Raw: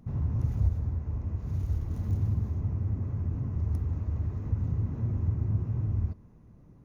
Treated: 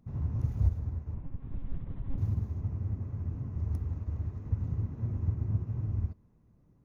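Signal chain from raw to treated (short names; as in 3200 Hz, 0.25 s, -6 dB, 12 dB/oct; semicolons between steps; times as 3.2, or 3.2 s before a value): 1.14–2.18 monotone LPC vocoder at 8 kHz 270 Hz; upward expander 1.5:1, over -40 dBFS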